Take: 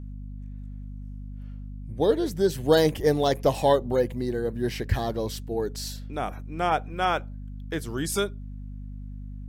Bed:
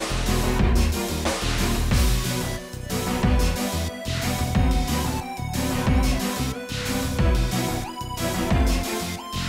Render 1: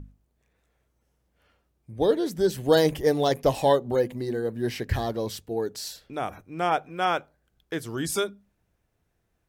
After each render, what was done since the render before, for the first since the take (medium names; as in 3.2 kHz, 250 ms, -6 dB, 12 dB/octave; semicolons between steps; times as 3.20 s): hum notches 50/100/150/200/250 Hz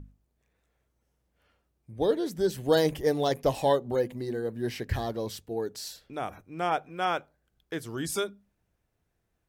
trim -3.5 dB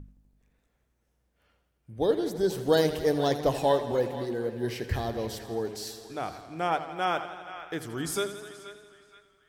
band-passed feedback delay 476 ms, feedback 42%, band-pass 1.9 kHz, level -11.5 dB; modulated delay 83 ms, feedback 75%, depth 59 cents, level -13 dB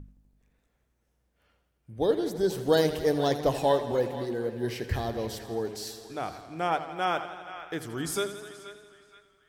no audible change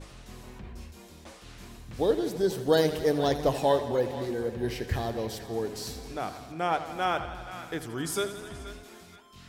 add bed -23.5 dB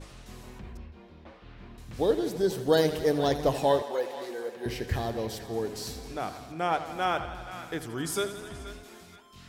0.77–1.78 s: distance through air 340 m; 3.82–4.66 s: high-pass 500 Hz